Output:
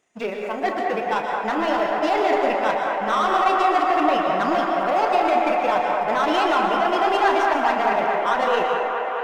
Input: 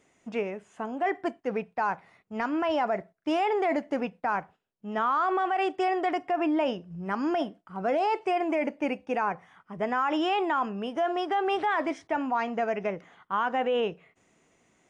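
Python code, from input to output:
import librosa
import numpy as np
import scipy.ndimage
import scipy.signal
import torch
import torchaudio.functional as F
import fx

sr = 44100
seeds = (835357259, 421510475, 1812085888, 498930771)

p1 = fx.low_shelf(x, sr, hz=370.0, db=-10.5)
p2 = fx.notch(p1, sr, hz=2200.0, q=27.0)
p3 = fx.leveller(p2, sr, passes=2)
p4 = fx.stretch_grains(p3, sr, factor=0.62, grain_ms=73.0)
p5 = fx.doubler(p4, sr, ms=33.0, db=-11.5)
p6 = p5 + fx.echo_wet_bandpass(p5, sr, ms=215, feedback_pct=82, hz=1100.0, wet_db=-3.5, dry=0)
p7 = fx.rev_plate(p6, sr, seeds[0], rt60_s=1.3, hf_ratio=0.65, predelay_ms=105, drr_db=3.0)
y = p7 * librosa.db_to_amplitude(3.0)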